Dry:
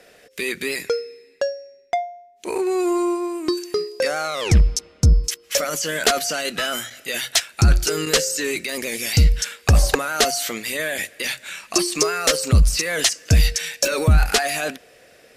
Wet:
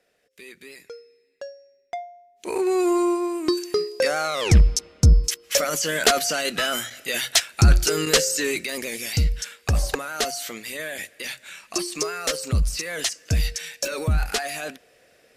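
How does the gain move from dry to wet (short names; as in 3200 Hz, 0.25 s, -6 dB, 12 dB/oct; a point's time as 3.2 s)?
0.95 s -18 dB
2.01 s -9 dB
2.67 s 0 dB
8.42 s 0 dB
9.3 s -7 dB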